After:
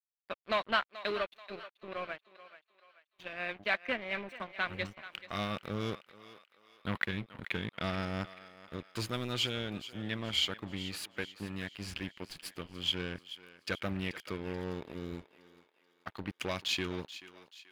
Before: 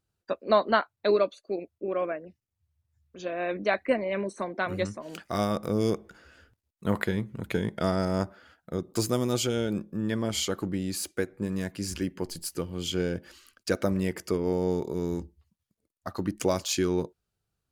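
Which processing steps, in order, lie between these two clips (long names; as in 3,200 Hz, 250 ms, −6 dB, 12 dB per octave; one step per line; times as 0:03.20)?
in parallel at −6 dB: wave folding −20.5 dBFS
on the sum: guitar amp tone stack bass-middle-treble 5-5-5
dead-zone distortion −50 dBFS
high shelf with overshoot 4,500 Hz −13.5 dB, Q 1.5
feedback echo with a high-pass in the loop 433 ms, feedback 46%, high-pass 550 Hz, level −14 dB
highs frequency-modulated by the lows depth 0.13 ms
level +7 dB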